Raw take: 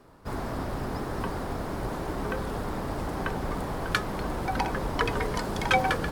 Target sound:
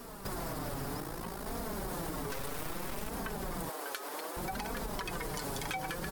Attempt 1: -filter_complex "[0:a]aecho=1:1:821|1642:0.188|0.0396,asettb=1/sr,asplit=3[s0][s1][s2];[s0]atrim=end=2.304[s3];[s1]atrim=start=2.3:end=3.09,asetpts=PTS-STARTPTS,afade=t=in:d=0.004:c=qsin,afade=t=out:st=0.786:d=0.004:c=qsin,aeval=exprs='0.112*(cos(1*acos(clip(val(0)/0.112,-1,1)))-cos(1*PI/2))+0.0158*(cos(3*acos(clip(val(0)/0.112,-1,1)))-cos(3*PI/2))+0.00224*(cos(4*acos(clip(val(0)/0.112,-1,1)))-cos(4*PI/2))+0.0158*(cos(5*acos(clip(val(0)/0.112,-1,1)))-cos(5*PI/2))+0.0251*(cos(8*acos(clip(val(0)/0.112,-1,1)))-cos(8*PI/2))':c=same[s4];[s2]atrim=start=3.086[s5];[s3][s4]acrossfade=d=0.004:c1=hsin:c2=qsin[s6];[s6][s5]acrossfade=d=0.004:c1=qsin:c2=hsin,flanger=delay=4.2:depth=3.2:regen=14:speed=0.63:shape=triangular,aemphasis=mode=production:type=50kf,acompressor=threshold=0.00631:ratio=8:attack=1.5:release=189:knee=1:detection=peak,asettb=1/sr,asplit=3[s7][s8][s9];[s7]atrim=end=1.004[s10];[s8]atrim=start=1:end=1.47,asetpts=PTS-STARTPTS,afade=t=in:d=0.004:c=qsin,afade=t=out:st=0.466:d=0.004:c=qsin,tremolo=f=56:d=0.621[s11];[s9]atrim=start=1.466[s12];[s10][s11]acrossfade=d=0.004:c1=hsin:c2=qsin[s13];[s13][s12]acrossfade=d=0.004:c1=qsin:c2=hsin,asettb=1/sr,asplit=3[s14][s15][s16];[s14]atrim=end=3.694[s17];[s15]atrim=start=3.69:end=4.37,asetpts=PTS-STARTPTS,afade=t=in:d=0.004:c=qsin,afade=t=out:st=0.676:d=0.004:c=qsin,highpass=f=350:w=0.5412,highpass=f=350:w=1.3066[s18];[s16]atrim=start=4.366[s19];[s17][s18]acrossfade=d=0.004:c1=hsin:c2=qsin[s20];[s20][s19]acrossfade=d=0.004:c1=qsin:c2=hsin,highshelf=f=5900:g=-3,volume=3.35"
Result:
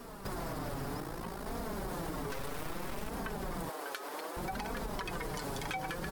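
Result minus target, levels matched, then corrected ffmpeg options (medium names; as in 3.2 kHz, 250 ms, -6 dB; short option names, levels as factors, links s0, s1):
8 kHz band -3.5 dB
-filter_complex "[0:a]aecho=1:1:821|1642:0.188|0.0396,asettb=1/sr,asplit=3[s0][s1][s2];[s0]atrim=end=2.304[s3];[s1]atrim=start=2.3:end=3.09,asetpts=PTS-STARTPTS,afade=t=in:d=0.004:c=qsin,afade=t=out:st=0.786:d=0.004:c=qsin,aeval=exprs='0.112*(cos(1*acos(clip(val(0)/0.112,-1,1)))-cos(1*PI/2))+0.0158*(cos(3*acos(clip(val(0)/0.112,-1,1)))-cos(3*PI/2))+0.00224*(cos(4*acos(clip(val(0)/0.112,-1,1)))-cos(4*PI/2))+0.0158*(cos(5*acos(clip(val(0)/0.112,-1,1)))-cos(5*PI/2))+0.0251*(cos(8*acos(clip(val(0)/0.112,-1,1)))-cos(8*PI/2))':c=same[s4];[s2]atrim=start=3.086[s5];[s3][s4]acrossfade=d=0.004:c1=hsin:c2=qsin[s6];[s6][s5]acrossfade=d=0.004:c1=qsin:c2=hsin,flanger=delay=4.2:depth=3.2:regen=14:speed=0.63:shape=triangular,aemphasis=mode=production:type=50kf,acompressor=threshold=0.00631:ratio=8:attack=1.5:release=189:knee=1:detection=peak,asettb=1/sr,asplit=3[s7][s8][s9];[s7]atrim=end=1.004[s10];[s8]atrim=start=1:end=1.47,asetpts=PTS-STARTPTS,afade=t=in:d=0.004:c=qsin,afade=t=out:st=0.466:d=0.004:c=qsin,tremolo=f=56:d=0.621[s11];[s9]atrim=start=1.466[s12];[s10][s11]acrossfade=d=0.004:c1=hsin:c2=qsin[s13];[s13][s12]acrossfade=d=0.004:c1=qsin:c2=hsin,asettb=1/sr,asplit=3[s14][s15][s16];[s14]atrim=end=3.694[s17];[s15]atrim=start=3.69:end=4.37,asetpts=PTS-STARTPTS,afade=t=in:d=0.004:c=qsin,afade=t=out:st=0.676:d=0.004:c=qsin,highpass=f=350:w=0.5412,highpass=f=350:w=1.3066[s18];[s16]atrim=start=4.366[s19];[s17][s18]acrossfade=d=0.004:c1=hsin:c2=qsin[s20];[s20][s19]acrossfade=d=0.004:c1=qsin:c2=hsin,highshelf=f=5900:g=3.5,volume=3.35"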